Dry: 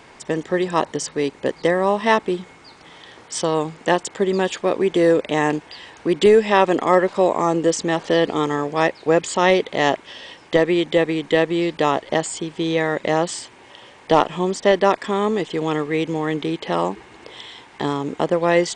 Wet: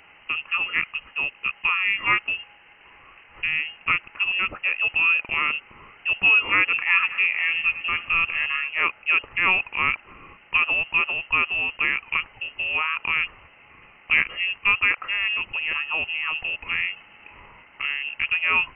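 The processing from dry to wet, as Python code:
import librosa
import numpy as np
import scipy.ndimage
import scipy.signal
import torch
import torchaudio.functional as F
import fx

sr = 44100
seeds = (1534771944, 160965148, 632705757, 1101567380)

y = fx.reverse_delay_fb(x, sr, ms=108, feedback_pct=60, wet_db=-13.5, at=(6.65, 8.69))
y = fx.dynamic_eq(y, sr, hz=1700.0, q=7.0, threshold_db=-40.0, ratio=4.0, max_db=5)
y = fx.freq_invert(y, sr, carrier_hz=3000)
y = y * 10.0 ** (-5.0 / 20.0)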